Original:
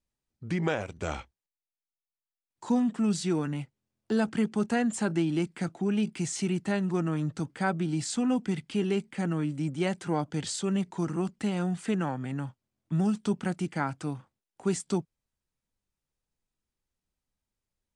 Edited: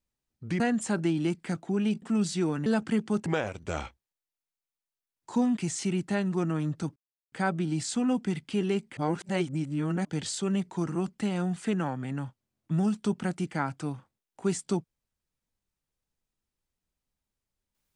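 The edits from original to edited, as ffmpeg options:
-filter_complex "[0:a]asplit=9[a][b][c][d][e][f][g][h][i];[a]atrim=end=0.602[j];[b]atrim=start=4.718:end=6.142[k];[c]atrim=start=2.908:end=3.552[l];[d]atrim=start=4.118:end=4.722[m];[e]atrim=start=0.598:end=2.912[n];[f]atrim=start=6.138:end=7.53,asetpts=PTS-STARTPTS,afade=t=out:st=1.388:d=0.004:c=hsin,apad=pad_dur=0.36[o];[g]atrim=start=7.53:end=9.182,asetpts=PTS-STARTPTS,afade=t=in:d=0.004:c=hsin[p];[h]atrim=start=9.178:end=10.262,asetpts=PTS-STARTPTS,areverse[q];[i]atrim=start=10.258[r];[j][k]acrossfade=d=0.004:c1=hsin:c2=hsin[s];[s][l]acrossfade=d=0.004:c1=hsin:c2=hsin[t];[t][m]acrossfade=d=0.004:c1=hsin:c2=hsin[u];[u][n]acrossfade=d=0.004:c1=hsin:c2=hsin[v];[o][p]concat=n=2:v=0:a=1[w];[v][w]acrossfade=d=0.004:c1=hsin:c2=hsin[x];[x][q]acrossfade=d=0.004:c1=hsin:c2=hsin[y];[y][r]acrossfade=d=0.004:c1=hsin:c2=hsin"

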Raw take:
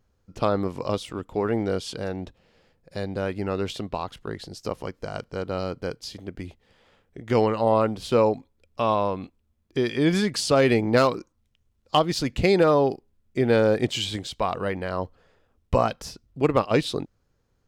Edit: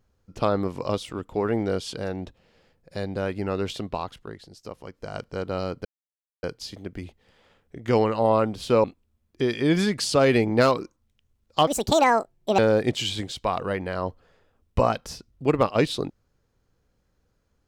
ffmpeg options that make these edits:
-filter_complex "[0:a]asplit=7[a][b][c][d][e][f][g];[a]atrim=end=4.39,asetpts=PTS-STARTPTS,afade=t=out:st=4:d=0.39:silence=0.375837[h];[b]atrim=start=4.39:end=4.84,asetpts=PTS-STARTPTS,volume=-8.5dB[i];[c]atrim=start=4.84:end=5.85,asetpts=PTS-STARTPTS,afade=t=in:d=0.39:silence=0.375837,afade=t=out:st=1.006:d=0.004:c=hsin,apad=pad_dur=0.58[j];[d]atrim=start=5.85:end=8.262,asetpts=PTS-STARTPTS,afade=t=in:d=0.004:c=hsin[k];[e]atrim=start=9.198:end=12.034[l];[f]atrim=start=12.03:end=13.54,asetpts=PTS-STARTPTS,asetrate=72765,aresample=44100,atrim=end_sample=40358,asetpts=PTS-STARTPTS[m];[g]atrim=start=13.536[n];[h][i][j][k]concat=n=4:v=0:a=1[o];[o][l]acrossfade=d=0.004:c1=hsin:c2=hsin[p];[p][m]acrossfade=d=0.004:c1=hsin:c2=hsin[q];[q][n]acrossfade=d=0.004:c1=hsin:c2=hsin"

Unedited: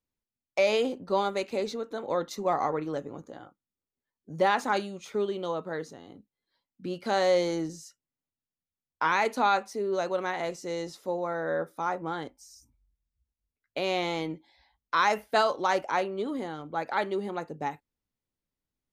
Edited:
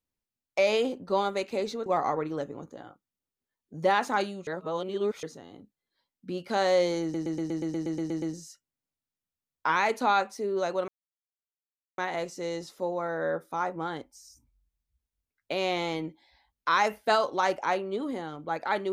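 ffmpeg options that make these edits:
-filter_complex "[0:a]asplit=15[a][b][c][d][e][f][g][h][i][j][k][l][m][n][o];[a]atrim=end=1.862[p];[b]atrim=start=2.418:end=5.032[q];[c]atrim=start=5.028:end=5.792,asetpts=PTS-STARTPTS,areverse[r];[d]atrim=start=5.788:end=7.702[s];[e]atrim=start=7.578:end=7.702[t];[f]atrim=start=7.578:end=7.702[u];[g]atrim=start=7.578:end=7.702[v];[h]atrim=start=7.578:end=7.702[w];[i]atrim=start=7.578:end=7.702[x];[j]atrim=start=7.578:end=7.702[y];[k]atrim=start=7.578:end=7.702[z];[l]atrim=start=7.578:end=7.702[aa];[m]atrim=start=7.578:end=7.702[ab];[n]atrim=start=7.578:end=10.24,asetpts=PTS-STARTPTS,afade=t=out:st=2.658:d=0.004:c=hsin,apad=pad_dur=1.1[ac];[o]atrim=start=10.24,asetpts=PTS-STARTPTS,afade=t=in:d=0.004:c=hsin[ad];[p][q]acrossfade=d=0.004:c1=hsin:c2=hsin[ae];[ae][r]acrossfade=d=0.004:c1=hsin:c2=hsin[af];[af][s]acrossfade=d=0.004:c1=hsin:c2=hsin[ag];[ag][t]acrossfade=d=0.004:c1=hsin:c2=hsin[ah];[ah][u]acrossfade=d=0.004:c1=hsin:c2=hsin[ai];[ai][v]acrossfade=d=0.004:c1=hsin:c2=hsin[aj];[aj][w]acrossfade=d=0.004:c1=hsin:c2=hsin[ak];[ak][x]acrossfade=d=0.004:c1=hsin:c2=hsin[al];[al][y]acrossfade=d=0.004:c1=hsin:c2=hsin[am];[am][z]acrossfade=d=0.004:c1=hsin:c2=hsin[an];[an][aa]acrossfade=d=0.004:c1=hsin:c2=hsin[ao];[ao][ab]acrossfade=d=0.004:c1=hsin:c2=hsin[ap];[ac][ad]concat=n=2:v=0:a=1[aq];[ap][aq]acrossfade=d=0.004:c1=hsin:c2=hsin"

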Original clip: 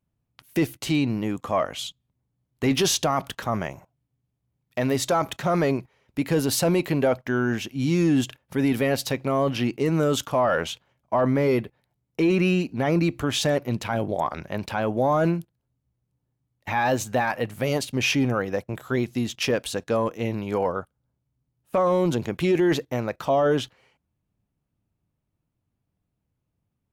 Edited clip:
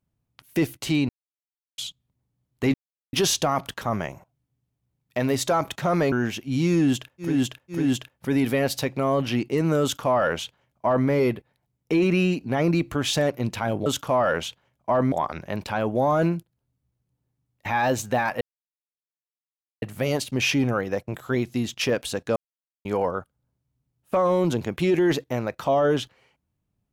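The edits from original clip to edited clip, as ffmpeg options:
-filter_complex "[0:a]asplit=12[a][b][c][d][e][f][g][h][i][j][k][l];[a]atrim=end=1.09,asetpts=PTS-STARTPTS,afade=t=out:st=1.086:d=0.004:c=hsin[m];[b]atrim=start=1.09:end=1.78,asetpts=PTS-STARTPTS,volume=0[n];[c]atrim=start=1.78:end=2.74,asetpts=PTS-STARTPTS,afade=t=in:d=0.004:c=hsin,afade=t=out:st=0.956:d=0.004:c=hsin,apad=pad_dur=0.39[o];[d]atrim=start=2.74:end=5.732,asetpts=PTS-STARTPTS,afade=t=in:d=0.004:c=hsin[p];[e]atrim=start=7.398:end=8.7[q];[f]atrim=start=7.96:end=8.7[r];[g]atrim=start=7.96:end=14.142[s];[h]atrim=start=10.098:end=11.362[t];[i]atrim=start=14.138:end=17.43,asetpts=PTS-STARTPTS,afade=t=out:st=3.288:d=0.004:c=hsin,apad=pad_dur=1.41[u];[j]atrim=start=17.43:end=19.97,asetpts=PTS-STARTPTS,afade=t=in:d=0.004:c=hsin,afade=t=out:st=2.536:d=0.004:c=hsin[v];[k]atrim=start=19.97:end=20.46,asetpts=PTS-STARTPTS,volume=0[w];[l]atrim=start=20.46,asetpts=PTS-STARTPTS,afade=t=in:d=0.004:c=hsin[x];[m][n][o][p]concat=n=4:v=0:a=1[y];[y][q]acrossfade=d=0.004:c1=hsin:c2=hsin[z];[z][r]acrossfade=d=0.24:c1=tri:c2=tri[aa];[aa][s]acrossfade=d=0.24:c1=tri:c2=tri[ab];[ab][t]acrossfade=d=0.004:c1=hsin:c2=hsin[ac];[u][v][w][x]concat=n=4:v=0:a=1[ad];[ac][ad]acrossfade=d=0.004:c1=hsin:c2=hsin"

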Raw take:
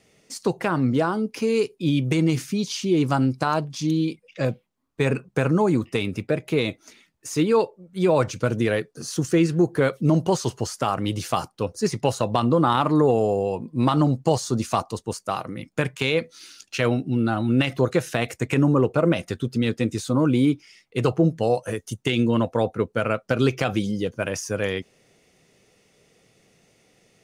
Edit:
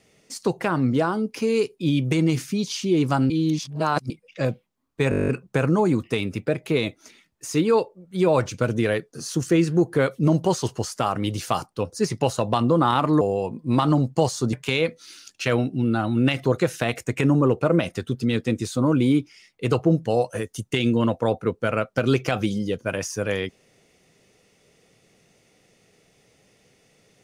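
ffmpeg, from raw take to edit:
-filter_complex "[0:a]asplit=14[a][b][c][d][e][f][g][h][i][j][k][l][m][n];[a]atrim=end=3.302[o];[b]atrim=start=3.298:end=4.102,asetpts=PTS-STARTPTS,areverse[p];[c]atrim=start=4.098:end=5.122[q];[d]atrim=start=5.098:end=5.122[r];[e]atrim=start=5.098:end=5.122[s];[f]atrim=start=5.098:end=5.122[t];[g]atrim=start=5.098:end=5.122[u];[h]atrim=start=5.098:end=5.122[v];[i]atrim=start=5.098:end=5.122[w];[j]atrim=start=5.098:end=5.122[x];[k]atrim=start=5.098:end=5.122[y];[l]atrim=start=5.098:end=13.032[z];[m]atrim=start=13.298:end=14.622[aa];[n]atrim=start=15.858[ab];[o][p]acrossfade=d=0.004:c1=hsin:c2=hsin[ac];[ac][q]acrossfade=d=0.004:c1=hsin:c2=hsin[ad];[ad][r]acrossfade=d=0.004:c1=hsin:c2=hsin[ae];[ae][s]acrossfade=d=0.004:c1=hsin:c2=hsin[af];[af][t]acrossfade=d=0.004:c1=hsin:c2=hsin[ag];[ag][u]acrossfade=d=0.004:c1=hsin:c2=hsin[ah];[ah][v]acrossfade=d=0.004:c1=hsin:c2=hsin[ai];[ai][w]acrossfade=d=0.004:c1=hsin:c2=hsin[aj];[aj][x]acrossfade=d=0.004:c1=hsin:c2=hsin[ak];[ak][y]acrossfade=d=0.004:c1=hsin:c2=hsin[al];[al][z]acrossfade=d=0.004:c1=hsin:c2=hsin[am];[am][aa]acrossfade=d=0.004:c1=hsin:c2=hsin[an];[an][ab]acrossfade=d=0.004:c1=hsin:c2=hsin"

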